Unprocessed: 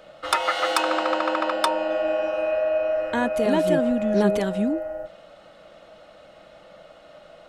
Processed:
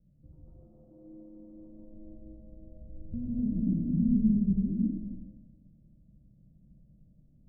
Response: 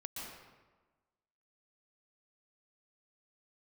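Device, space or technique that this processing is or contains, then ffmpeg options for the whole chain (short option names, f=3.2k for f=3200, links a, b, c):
club heard from the street: -filter_complex "[0:a]asettb=1/sr,asplit=3[a][b][c];[a]atrim=end=2.754[d];[b]atrim=start=2.75:end=4.54,asetpts=PTS-STARTPTS,afade=t=in:d=0.004:c=qsin,afade=t=out:st=1.786:d=0.004:c=qsin,lowshelf=f=350:g=6[e];[c]atrim=start=4.536[f];[d][e]acrossfade=d=0.004:c1=hsin:c2=qsin[g];[g][f]acrossfade=d=0.004:c1=qsin:c2=hsin,alimiter=limit=-12.5dB:level=0:latency=1:release=116,lowpass=f=170:w=0.5412,lowpass=f=170:w=1.3066[h];[1:a]atrim=start_sample=2205[i];[h][i]afir=irnorm=-1:irlink=0,volume=6.5dB"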